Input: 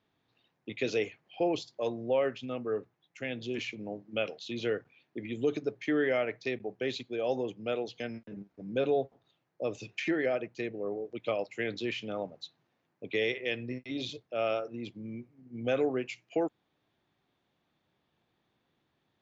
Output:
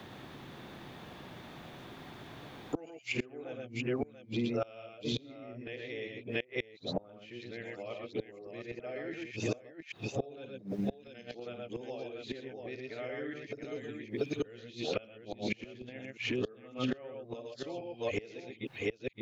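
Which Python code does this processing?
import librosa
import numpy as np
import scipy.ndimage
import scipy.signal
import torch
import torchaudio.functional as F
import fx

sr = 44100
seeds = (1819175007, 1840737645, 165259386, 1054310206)

p1 = np.flip(x).copy()
p2 = p1 + fx.echo_multitap(p1, sr, ms=(50, 115, 123, 130, 685), db=(-10.5, -4.0, -12.5, -9.0, -6.5), dry=0)
p3 = fx.gate_flip(p2, sr, shuts_db=-26.0, range_db=-28)
p4 = fx.low_shelf(p3, sr, hz=84.0, db=8.0)
p5 = fx.band_squash(p4, sr, depth_pct=70)
y = p5 * librosa.db_to_amplitude(8.0)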